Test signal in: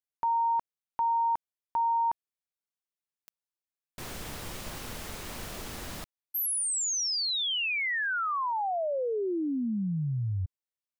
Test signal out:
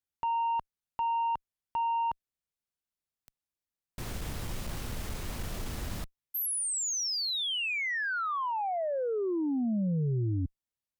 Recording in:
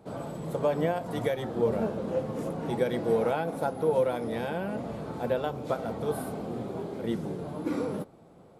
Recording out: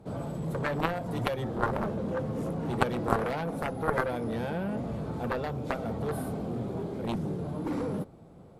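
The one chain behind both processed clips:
low-shelf EQ 180 Hz +11.5 dB
harmonic generator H 3 −6 dB, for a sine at −11 dBFS
level +4.5 dB

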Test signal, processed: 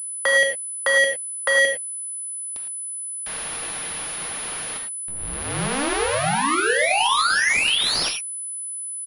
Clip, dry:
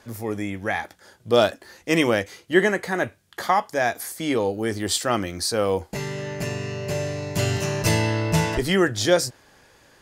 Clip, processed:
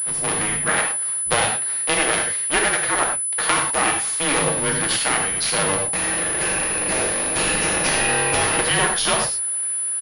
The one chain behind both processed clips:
sub-harmonics by changed cycles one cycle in 2, inverted
high-pass filter 1,200 Hz 6 dB per octave
comb filter 6.5 ms, depth 30%
downward compressor 6 to 1, threshold −25 dBFS
frequency shifter −140 Hz
reverb whose tail is shaped and stops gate 130 ms flat, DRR 1.5 dB
switching amplifier with a slow clock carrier 10,000 Hz
level +8 dB

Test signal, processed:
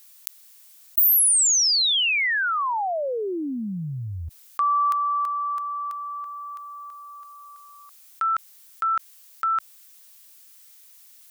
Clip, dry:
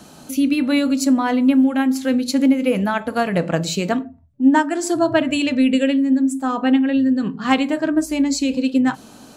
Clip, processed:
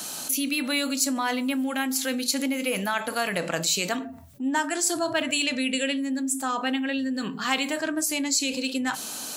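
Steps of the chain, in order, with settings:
spectral tilt +4 dB per octave
envelope flattener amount 50%
level −9.5 dB

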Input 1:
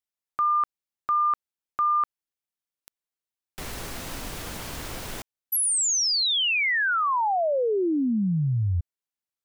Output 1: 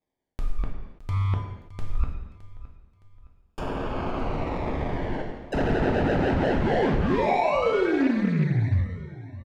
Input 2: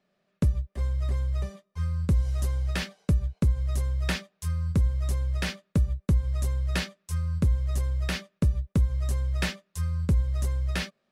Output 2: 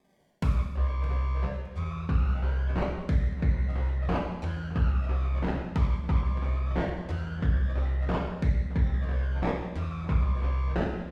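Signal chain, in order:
sample-and-hold swept by an LFO 31×, swing 60% 0.21 Hz
reversed playback
downward compressor, threshold −29 dBFS
reversed playback
treble cut that deepens with the level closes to 2,100 Hz, closed at −34 dBFS
repeating echo 615 ms, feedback 35%, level −17 dB
reverb whose tail is shaped and stops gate 360 ms falling, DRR −1 dB
highs frequency-modulated by the lows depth 0.25 ms
level +4.5 dB

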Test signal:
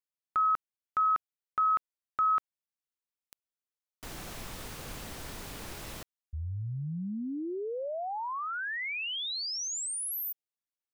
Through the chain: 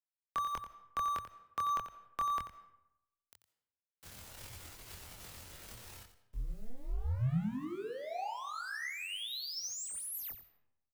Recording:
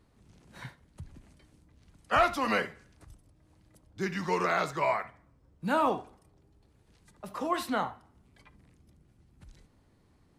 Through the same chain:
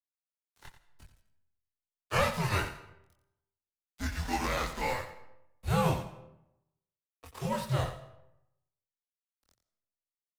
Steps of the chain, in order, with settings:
spectral envelope flattened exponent 0.6
dynamic equaliser 270 Hz, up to +6 dB, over −49 dBFS, Q 2.4
dead-zone distortion −42.5 dBFS
frequency shifter −120 Hz
multi-voice chorus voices 6, 0.24 Hz, delay 24 ms, depth 1.2 ms
single-tap delay 89 ms −11 dB
comb and all-pass reverb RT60 0.87 s, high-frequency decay 0.6×, pre-delay 110 ms, DRR 17.5 dB

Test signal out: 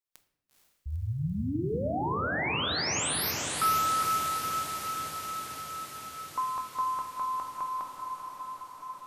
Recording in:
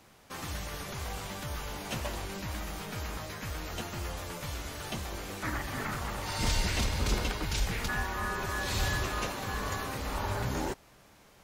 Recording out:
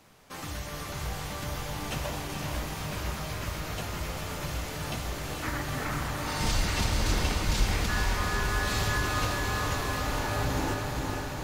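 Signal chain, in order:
on a send: feedback delay with all-pass diffusion 461 ms, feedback 75%, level −4 dB
on the sum: rectangular room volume 220 cubic metres, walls mixed, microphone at 0.43 metres

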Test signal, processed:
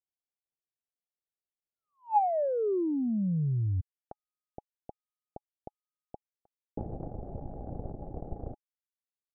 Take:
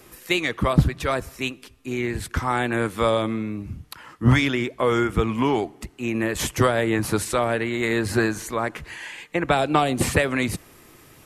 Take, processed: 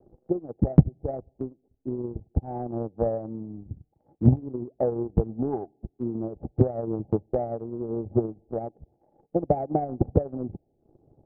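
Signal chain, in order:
Chebyshev low-pass filter 840 Hz, order 10
transient designer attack +10 dB, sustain −10 dB
level −7.5 dB

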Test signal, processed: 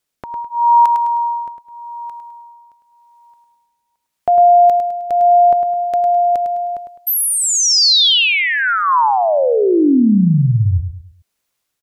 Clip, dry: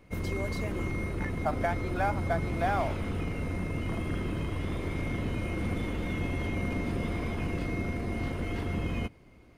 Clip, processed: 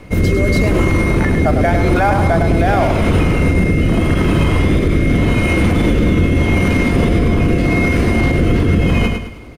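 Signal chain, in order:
rotating-speaker cabinet horn 0.85 Hz
repeating echo 104 ms, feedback 37%, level −8 dB
boost into a limiter +27 dB
level −4 dB

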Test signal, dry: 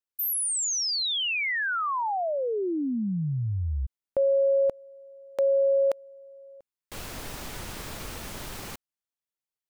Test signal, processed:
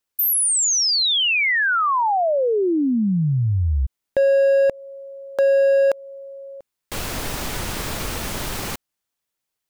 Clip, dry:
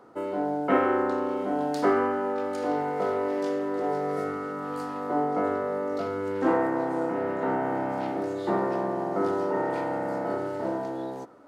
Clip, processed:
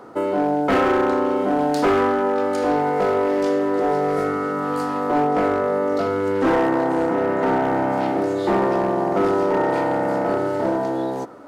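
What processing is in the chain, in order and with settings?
in parallel at −2 dB: downward compressor 8 to 1, threshold −33 dBFS
on the sum: hard clipping −19.5 dBFS
level +6 dB

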